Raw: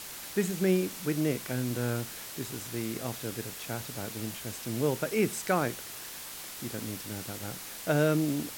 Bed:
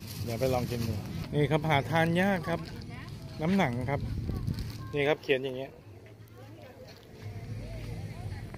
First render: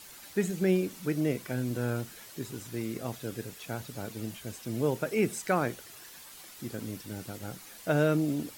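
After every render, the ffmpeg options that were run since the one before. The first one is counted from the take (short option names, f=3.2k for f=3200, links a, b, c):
-af "afftdn=nr=9:nf=-43"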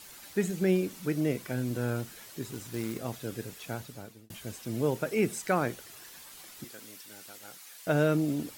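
-filter_complex "[0:a]asettb=1/sr,asplit=3[a][b][c];[a]atrim=end=2.504[d];[b]atrim=start=2.5:end=2.99,asetpts=PTS-STARTPTS,afade=t=in:d=0.004:c=qsin,afade=t=out:st=0.486:d=0.004:c=qsin,acrusher=bits=3:mode=log:mix=0:aa=0.000001[e];[c]atrim=start=2.986[f];[d][e]acrossfade=d=0.004:c1=hsin:c2=qsin[g];[g][f]acrossfade=d=0.004:c1=qsin:c2=hsin,asettb=1/sr,asplit=3[h][i][j];[h]atrim=end=6.644[k];[i]atrim=start=6.64:end=7.87,asetpts=PTS-STARTPTS,afade=t=in:d=0.004:c=qsin,afade=t=out:st=1.226:d=0.004:c=qsin,highpass=f=1.5k:p=1[l];[j]atrim=start=7.866[m];[k][l]acrossfade=d=0.004:c1=hsin:c2=qsin[n];[n][m]acrossfade=d=0.004:c1=qsin:c2=hsin,asplit=2[o][p];[o]atrim=end=4.3,asetpts=PTS-STARTPTS,afade=t=out:st=3.72:d=0.58[q];[p]atrim=start=4.3,asetpts=PTS-STARTPTS,afade=t=in:d=0.004:c=hsin[r];[q][r]concat=n=2:v=0:a=1"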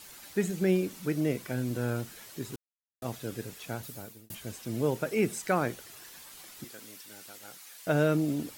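-filter_complex "[0:a]asettb=1/sr,asplit=3[a][b][c];[a]atrim=end=3.834[d];[b]atrim=start=3.83:end=4.35,asetpts=PTS-STARTPTS,afade=t=in:d=0.004:c=qsin,afade=t=out:st=0.516:d=0.004:c=qsin,highshelf=f=9.1k:g=12[e];[c]atrim=start=4.346[f];[d][e]acrossfade=d=0.004:c1=hsin:c2=qsin[g];[g][f]acrossfade=d=0.004:c1=qsin:c2=hsin,asplit=3[h][i][j];[h]atrim=end=2.56,asetpts=PTS-STARTPTS,afade=t=out:st=2.556:d=0.004:c=hsin[k];[i]atrim=start=2.56:end=3.02,asetpts=PTS-STARTPTS,volume=0[l];[j]atrim=start=3.02,asetpts=PTS-STARTPTS,afade=t=in:d=0.004:c=hsin[m];[k][l][m]concat=n=3:v=0:a=1"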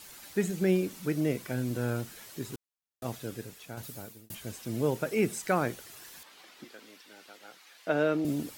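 -filter_complex "[0:a]asettb=1/sr,asplit=3[a][b][c];[a]atrim=end=6.234[d];[b]atrim=start=6.23:end=8.25,asetpts=PTS-STARTPTS,afade=t=in:d=0.004:c=qsin,afade=t=out:st=2.016:d=0.004:c=qsin,acrossover=split=210 4800:gain=0.112 1 0.178[e][f][g];[e][f][g]amix=inputs=3:normalize=0[h];[c]atrim=start=8.246[i];[d][h]acrossfade=d=0.004:c1=hsin:c2=qsin[j];[j][i]acrossfade=d=0.004:c1=qsin:c2=hsin,asplit=2[k][l];[k]atrim=end=3.77,asetpts=PTS-STARTPTS,afade=t=out:st=3.12:d=0.65:silence=0.446684[m];[l]atrim=start=3.77,asetpts=PTS-STARTPTS,afade=t=in:d=0.004:c=hsin:silence=0.446684[n];[m][n]concat=n=2:v=0:a=1"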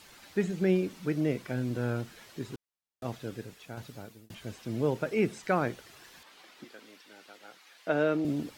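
-filter_complex "[0:a]acrossover=split=5900[a][b];[b]acompressor=threshold=-55dB:ratio=4:attack=1:release=60[c];[a][c]amix=inputs=2:normalize=0,highshelf=f=6.8k:g=-6"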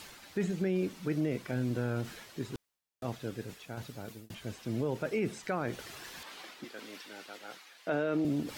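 -af "alimiter=limit=-22.5dB:level=0:latency=1:release=22,areverse,acompressor=mode=upward:threshold=-38dB:ratio=2.5,areverse"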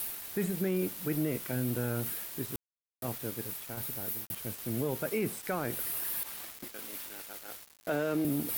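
-af "aexciter=amount=14.9:drive=4.2:freq=9.3k,aeval=exprs='val(0)*gte(abs(val(0)),0.0106)':c=same"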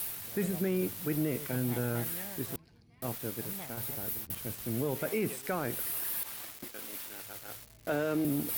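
-filter_complex "[1:a]volume=-20dB[a];[0:a][a]amix=inputs=2:normalize=0"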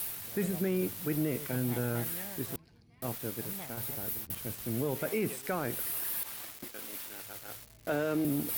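-af anull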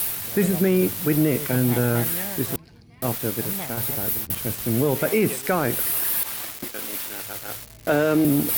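-af "volume=11.5dB"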